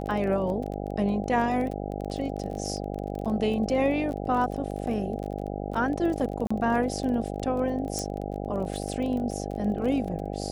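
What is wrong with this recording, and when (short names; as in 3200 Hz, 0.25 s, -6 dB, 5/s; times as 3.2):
buzz 50 Hz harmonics 16 -33 dBFS
crackle 20/s -33 dBFS
6.47–6.5 gap 35 ms
7.99 pop -17 dBFS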